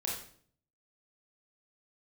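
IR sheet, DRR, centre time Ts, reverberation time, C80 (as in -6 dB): -3.0 dB, 43 ms, 0.55 s, 7.0 dB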